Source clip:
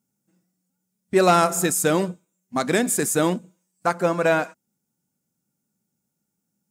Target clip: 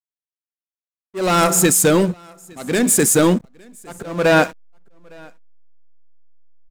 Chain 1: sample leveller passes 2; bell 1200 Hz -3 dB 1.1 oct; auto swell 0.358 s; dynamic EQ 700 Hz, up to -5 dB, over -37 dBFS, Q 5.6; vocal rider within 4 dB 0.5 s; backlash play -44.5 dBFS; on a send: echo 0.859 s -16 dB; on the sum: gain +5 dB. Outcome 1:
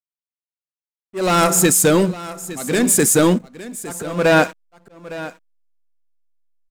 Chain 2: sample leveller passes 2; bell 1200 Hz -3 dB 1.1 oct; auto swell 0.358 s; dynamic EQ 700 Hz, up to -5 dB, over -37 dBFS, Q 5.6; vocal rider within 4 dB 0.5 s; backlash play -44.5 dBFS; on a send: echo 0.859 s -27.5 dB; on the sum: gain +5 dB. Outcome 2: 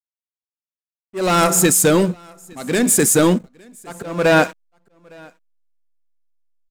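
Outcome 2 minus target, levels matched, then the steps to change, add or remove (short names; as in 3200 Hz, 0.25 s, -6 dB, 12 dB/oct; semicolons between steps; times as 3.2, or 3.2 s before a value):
backlash: distortion -9 dB
change: backlash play -36 dBFS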